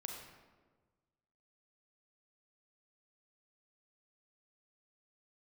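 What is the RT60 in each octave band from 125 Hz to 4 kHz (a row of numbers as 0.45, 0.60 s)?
1.8, 1.6, 1.5, 1.3, 1.1, 0.80 s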